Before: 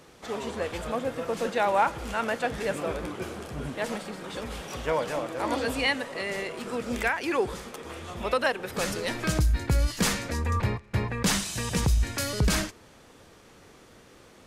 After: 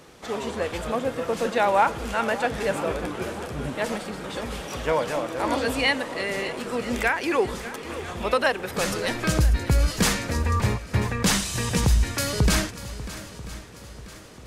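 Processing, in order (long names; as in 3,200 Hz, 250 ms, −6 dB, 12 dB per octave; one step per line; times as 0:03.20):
feedback echo with a long and a short gap by turns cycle 989 ms, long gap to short 1.5 to 1, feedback 41%, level −15 dB
level +3.5 dB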